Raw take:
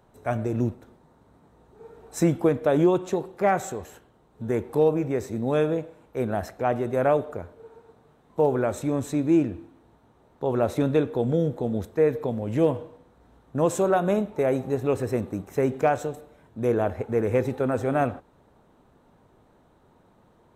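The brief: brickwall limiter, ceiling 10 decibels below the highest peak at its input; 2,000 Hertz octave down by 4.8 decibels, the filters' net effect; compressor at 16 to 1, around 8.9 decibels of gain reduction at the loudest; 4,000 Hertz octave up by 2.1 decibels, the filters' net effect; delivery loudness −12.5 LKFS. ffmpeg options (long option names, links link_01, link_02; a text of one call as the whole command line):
ffmpeg -i in.wav -af "equalizer=frequency=2000:width_type=o:gain=-8,equalizer=frequency=4000:width_type=o:gain=5,acompressor=threshold=-24dB:ratio=16,volume=22.5dB,alimiter=limit=-2.5dB:level=0:latency=1" out.wav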